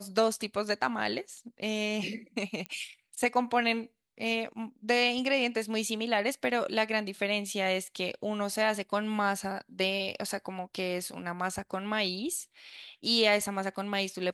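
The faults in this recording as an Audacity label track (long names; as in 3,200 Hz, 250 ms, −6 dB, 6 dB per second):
2.660000	2.660000	click −22 dBFS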